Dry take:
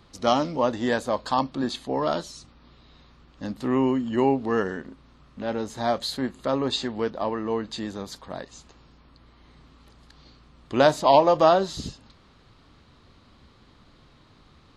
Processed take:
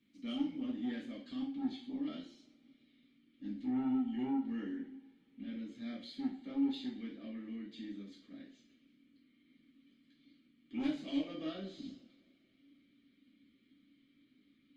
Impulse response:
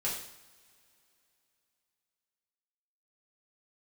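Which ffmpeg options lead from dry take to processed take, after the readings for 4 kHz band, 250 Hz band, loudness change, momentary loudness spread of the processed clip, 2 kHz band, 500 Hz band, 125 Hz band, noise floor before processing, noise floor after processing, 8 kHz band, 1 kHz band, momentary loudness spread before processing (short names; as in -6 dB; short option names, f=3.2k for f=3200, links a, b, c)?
-18.0 dB, -8.5 dB, -15.5 dB, 14 LU, -21.0 dB, -28.0 dB, -20.5 dB, -56 dBFS, -71 dBFS, under -25 dB, -28.5 dB, 18 LU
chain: -filter_complex "[0:a]asplit=3[a][b][c];[a]bandpass=f=270:t=q:w=8,volume=0dB[d];[b]bandpass=f=2.29k:t=q:w=8,volume=-6dB[e];[c]bandpass=f=3.01k:t=q:w=8,volume=-9dB[f];[d][e][f]amix=inputs=3:normalize=0,asoftclip=type=tanh:threshold=-26.5dB[g];[1:a]atrim=start_sample=2205,asetrate=66150,aresample=44100[h];[g][h]afir=irnorm=-1:irlink=0,volume=-3.5dB" -ar 48000 -c:a libopus -b:a 32k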